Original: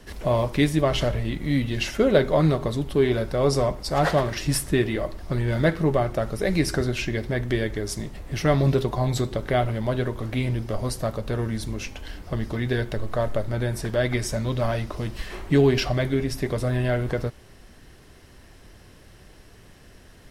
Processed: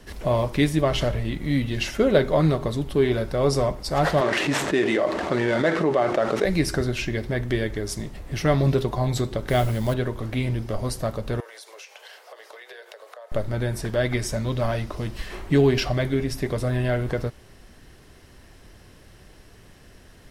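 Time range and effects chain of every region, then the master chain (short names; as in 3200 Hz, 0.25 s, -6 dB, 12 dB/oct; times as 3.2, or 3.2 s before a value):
4.21–6.45 median filter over 9 samples + BPF 310–7200 Hz + fast leveller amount 70%
9.48–9.94 tone controls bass +3 dB, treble +10 dB + modulation noise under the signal 26 dB
11.4–13.32 steep high-pass 460 Hz 48 dB/oct + compressor 10:1, threshold -39 dBFS
whole clip: dry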